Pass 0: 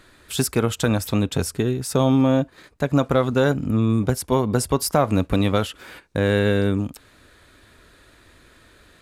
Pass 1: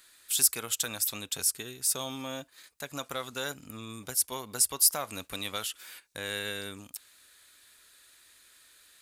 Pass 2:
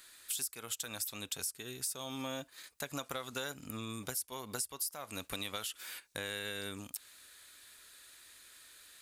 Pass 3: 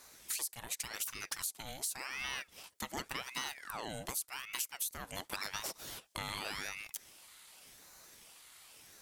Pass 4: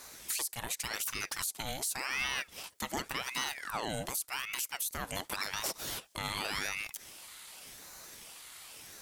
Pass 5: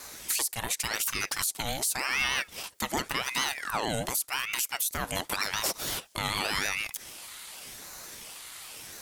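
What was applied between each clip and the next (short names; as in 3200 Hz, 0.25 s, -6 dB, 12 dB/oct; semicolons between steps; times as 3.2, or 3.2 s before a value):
pre-emphasis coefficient 0.97; gain +3 dB
compressor 8:1, threshold -37 dBFS, peak gain reduction 19.5 dB; gain +1.5 dB
ring modulator with a swept carrier 1400 Hz, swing 75%, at 0.88 Hz; gain +2.5 dB
limiter -29.5 dBFS, peak gain reduction 9 dB; gain +7.5 dB
vibrato 6.5 Hz 54 cents; gain +6 dB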